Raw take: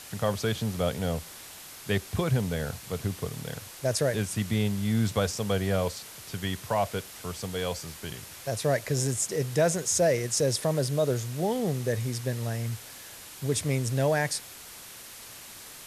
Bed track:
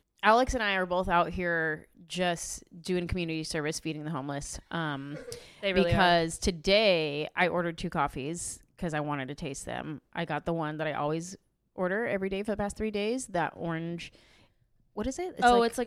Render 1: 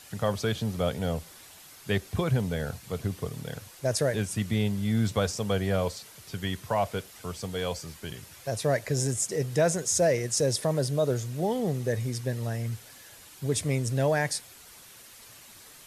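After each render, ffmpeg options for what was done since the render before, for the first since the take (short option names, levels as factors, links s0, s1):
-af "afftdn=nr=7:nf=-46"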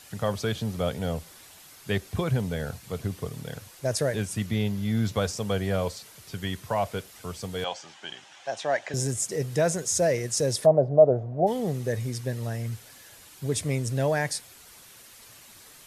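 -filter_complex "[0:a]asettb=1/sr,asplit=3[s0][s1][s2];[s0]atrim=end=4.464[s3];[s1]atrim=start=4.46:end=5.16,asetpts=PTS-STARTPTS,afade=t=in:d=0.004:c=qsin,afade=t=out:st=0.696:d=0.004:c=qsin,equalizer=f=8400:w=6:g=-10.5[s4];[s2]atrim=start=5.156[s5];[s3][s4]acrossfade=d=0.004:c1=hsin:c2=qsin[s6];[s6][s5]acrossfade=d=0.004:c1=qsin:c2=hsin,asettb=1/sr,asplit=3[s7][s8][s9];[s7]atrim=end=7.644[s10];[s8]atrim=start=7.64:end=8.94,asetpts=PTS-STARTPTS,afade=t=in:d=0.004:c=qsin,afade=t=out:st=1.296:d=0.004:c=qsin,highpass=370,equalizer=f=450:t=q:w=4:g=-8,equalizer=f=790:t=q:w=4:g=10,equalizer=f=1600:t=q:w=4:g=4,equalizer=f=3100:t=q:w=4:g=7,equalizer=f=4600:t=q:w=4:g=-5,lowpass=f=6700:w=0.5412,lowpass=f=6700:w=1.3066[s11];[s9]atrim=start=8.936[s12];[s10][s11]acrossfade=d=0.004:c1=hsin:c2=qsin[s13];[s13][s12]acrossfade=d=0.004:c1=qsin:c2=hsin,asplit=3[s14][s15][s16];[s14]afade=t=out:st=10.65:d=0.02[s17];[s15]lowpass=f=690:t=q:w=5.4,afade=t=in:st=10.65:d=0.02,afade=t=out:st=11.46:d=0.02[s18];[s16]afade=t=in:st=11.46:d=0.02[s19];[s17][s18][s19]amix=inputs=3:normalize=0"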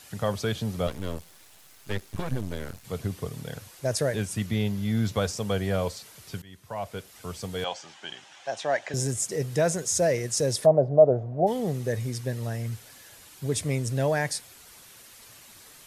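-filter_complex "[0:a]asettb=1/sr,asplit=3[s0][s1][s2];[s0]atrim=end=0.874[s3];[s1]atrim=start=0.87:end=2.85,asetpts=PTS-STARTPTS,afade=t=in:d=0.004:c=qsin,afade=t=out:st=1.976:d=0.004:c=qsin,aeval=exprs='max(val(0),0)':c=same[s4];[s2]atrim=start=2.846[s5];[s3][s4]acrossfade=d=0.004:c1=hsin:c2=qsin[s6];[s6][s5]acrossfade=d=0.004:c1=qsin:c2=hsin,asplit=2[s7][s8];[s7]atrim=end=6.42,asetpts=PTS-STARTPTS,afade=t=out:st=6.416:d=0.004:c=hsin:silence=0.0707946[s9];[s8]atrim=start=6.42,asetpts=PTS-STARTPTS,afade=t=in:d=0.92:silence=0.0707946[s10];[s9][s10]concat=n=2:v=0:a=1"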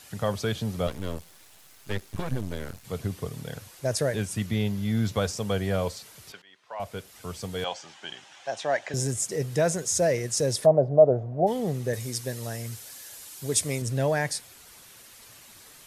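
-filter_complex "[0:a]asettb=1/sr,asplit=3[s0][s1][s2];[s0]atrim=end=6.324[s3];[s1]atrim=start=6.32:end=6.8,asetpts=PTS-STARTPTS,afade=t=in:d=0.004:c=qsin,afade=t=out:st=0.476:d=0.004:c=qsin,highpass=620,lowpass=4000[s4];[s2]atrim=start=6.796[s5];[s3][s4]acrossfade=d=0.004:c1=hsin:c2=qsin[s6];[s6][s5]acrossfade=d=0.004:c1=qsin:c2=hsin,asettb=1/sr,asplit=3[s7][s8][s9];[s7]atrim=end=11.934[s10];[s8]atrim=start=11.93:end=13.82,asetpts=PTS-STARTPTS,afade=t=in:d=0.004:c=qsin,afade=t=out:st=1.886:d=0.004:c=qsin,bass=f=250:g=-5,treble=f=4000:g=8[s11];[s9]atrim=start=13.816[s12];[s10][s11]acrossfade=d=0.004:c1=hsin:c2=qsin[s13];[s13][s12]acrossfade=d=0.004:c1=qsin:c2=hsin"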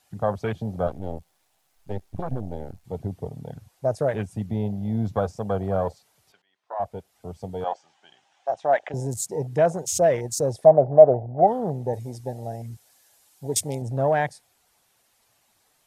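-af "afwtdn=0.02,equalizer=f=760:t=o:w=0.67:g=9"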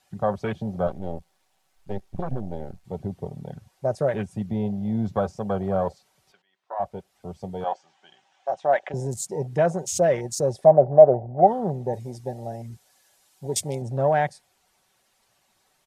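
-af "highshelf=f=11000:g=-10,aecho=1:1:5.3:0.33"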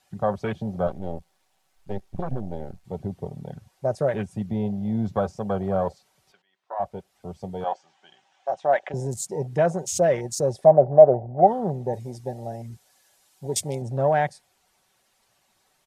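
-af anull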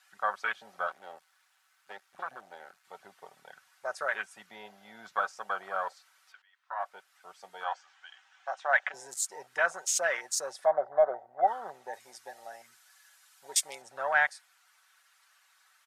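-af "highpass=f=1400:t=q:w=2.9,aeval=exprs='0.251*(cos(1*acos(clip(val(0)/0.251,-1,1)))-cos(1*PI/2))+0.00398*(cos(2*acos(clip(val(0)/0.251,-1,1)))-cos(2*PI/2))':c=same"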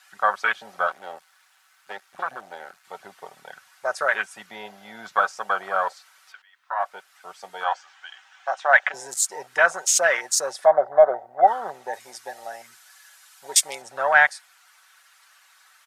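-af "volume=2.99"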